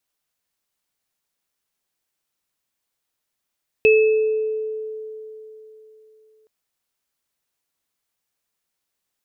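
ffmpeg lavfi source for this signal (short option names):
-f lavfi -i "aevalsrc='0.316*pow(10,-3*t/3.48)*sin(2*PI*435*t)+0.178*pow(10,-3*t/0.93)*sin(2*PI*2600*t)':d=2.62:s=44100"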